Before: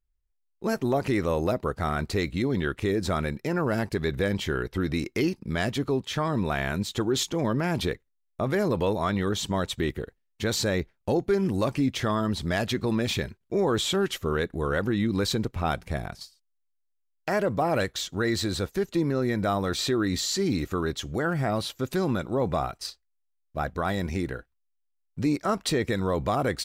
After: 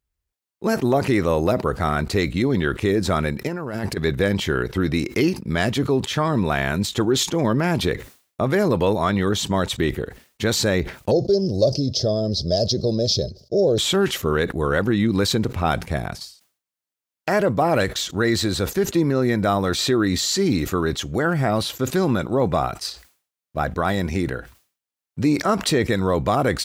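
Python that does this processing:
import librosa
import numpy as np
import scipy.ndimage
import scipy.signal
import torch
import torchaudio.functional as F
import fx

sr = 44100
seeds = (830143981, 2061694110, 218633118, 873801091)

y = fx.over_compress(x, sr, threshold_db=-31.0, ratio=-0.5, at=(3.47, 3.97))
y = fx.curve_eq(y, sr, hz=(130.0, 270.0, 610.0, 910.0, 1400.0, 2300.0, 5100.0, 8000.0), db=(0, -7, 7, -21, -26, -28, 15, -14), at=(11.11, 13.78))
y = scipy.signal.sosfilt(scipy.signal.butter(2, 63.0, 'highpass', fs=sr, output='sos'), y)
y = fx.sustainer(y, sr, db_per_s=140.0)
y = y * 10.0 ** (6.0 / 20.0)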